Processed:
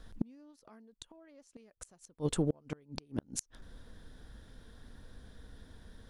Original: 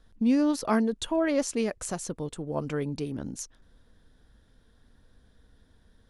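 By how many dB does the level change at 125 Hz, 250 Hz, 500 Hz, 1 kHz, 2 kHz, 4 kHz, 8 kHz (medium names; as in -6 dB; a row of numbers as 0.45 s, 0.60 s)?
-3.5 dB, -13.5 dB, -12.0 dB, -18.0 dB, -17.0 dB, -9.0 dB, -7.5 dB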